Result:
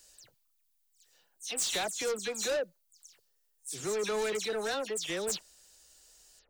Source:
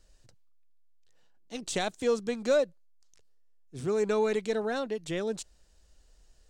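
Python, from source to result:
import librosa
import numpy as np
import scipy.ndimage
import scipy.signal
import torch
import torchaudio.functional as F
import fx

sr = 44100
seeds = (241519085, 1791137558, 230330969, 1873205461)

y = fx.spec_delay(x, sr, highs='early', ms=104)
y = fx.riaa(y, sr, side='recording')
y = 10.0 ** (-30.5 / 20.0) * np.tanh(y / 10.0 ** (-30.5 / 20.0))
y = F.gain(torch.from_numpy(y), 2.5).numpy()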